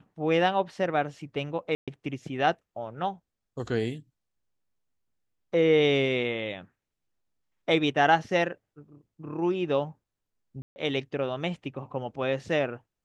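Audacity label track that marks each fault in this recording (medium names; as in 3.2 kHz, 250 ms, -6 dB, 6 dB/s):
1.750000	1.880000	dropout 126 ms
10.620000	10.760000	dropout 140 ms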